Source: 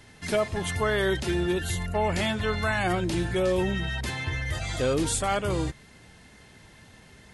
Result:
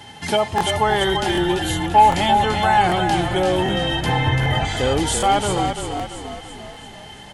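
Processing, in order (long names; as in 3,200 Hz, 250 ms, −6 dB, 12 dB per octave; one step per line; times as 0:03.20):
0:04.06–0:04.65: octave-band graphic EQ 125/250/500/1,000/2,000/4,000/8,000 Hz +11/+4/+7/+5/+4/−7/−7 dB
in parallel at −0.5 dB: downward compressor, threshold −37 dBFS, peak gain reduction 18 dB
on the sum: high-pass filter 79 Hz
hollow resonant body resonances 840/3,100 Hz, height 18 dB, ringing for 65 ms
on a send: echo with shifted repeats 339 ms, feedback 51%, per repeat −34 Hz, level −6.5 dB
on the sum: soft clipping −5.5 dBFS, distortion −25 dB
regular buffer underruns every 0.77 s, samples 1,024, repeat, from 0:00.56
level +3 dB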